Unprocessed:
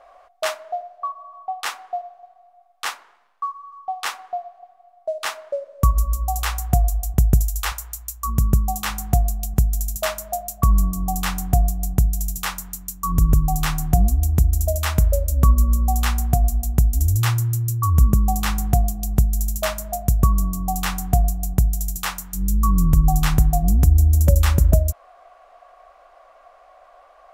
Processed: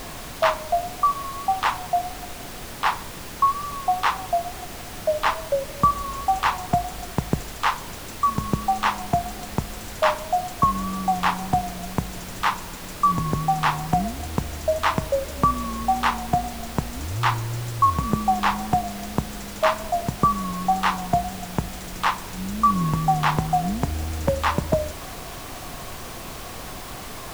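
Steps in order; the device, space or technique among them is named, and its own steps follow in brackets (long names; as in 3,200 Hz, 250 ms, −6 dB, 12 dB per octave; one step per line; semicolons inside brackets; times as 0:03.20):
horn gramophone (band-pass filter 200–3,500 Hz; parametric band 960 Hz +11.5 dB 0.48 octaves; tape wow and flutter; pink noise bed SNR 11 dB)
level +2 dB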